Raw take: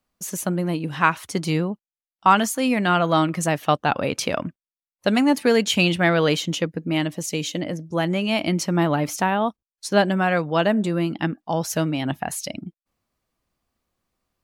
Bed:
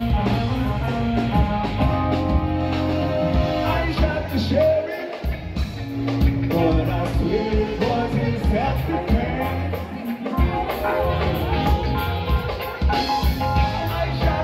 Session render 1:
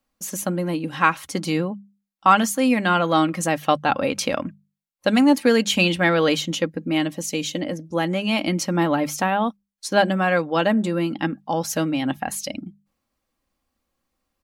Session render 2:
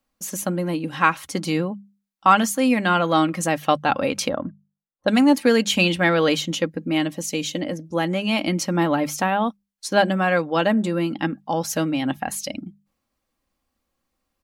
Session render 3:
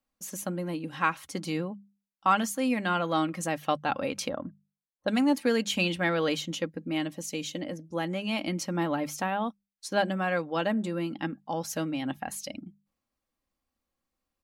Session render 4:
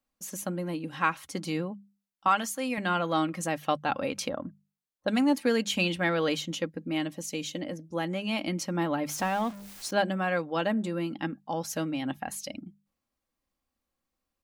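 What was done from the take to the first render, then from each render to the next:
hum notches 50/100/150/200 Hz; comb 3.7 ms, depth 42%
4.29–5.08 s: boxcar filter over 18 samples
trim -8.5 dB
2.28–2.78 s: bass shelf 250 Hz -11.5 dB; 9.09–9.91 s: jump at every zero crossing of -37.5 dBFS

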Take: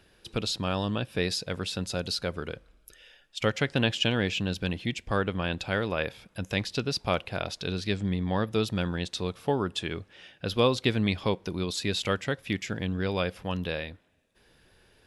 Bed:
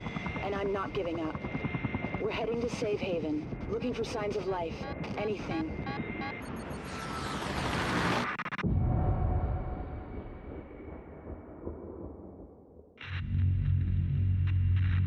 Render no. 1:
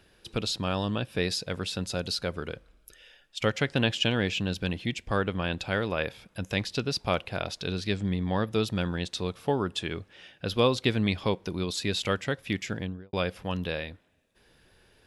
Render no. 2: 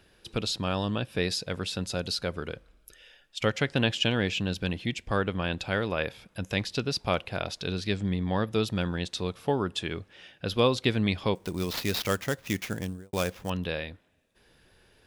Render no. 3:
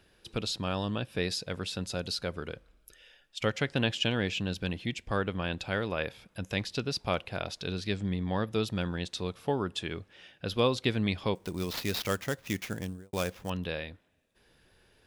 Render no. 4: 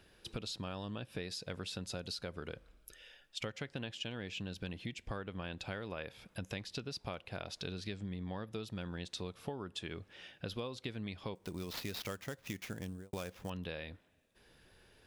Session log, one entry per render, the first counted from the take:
12.72–13.13 s: studio fade out
11.35–13.50 s: sample-rate reducer 8.8 kHz, jitter 20%
trim -3 dB
compression 10:1, threshold -38 dBFS, peak gain reduction 17 dB

